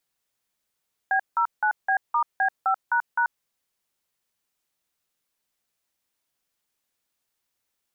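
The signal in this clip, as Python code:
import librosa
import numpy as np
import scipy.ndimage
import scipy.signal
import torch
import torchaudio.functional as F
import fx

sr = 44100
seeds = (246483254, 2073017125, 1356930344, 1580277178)

y = fx.dtmf(sr, digits='B09B*B5##', tone_ms=86, gap_ms=172, level_db=-21.5)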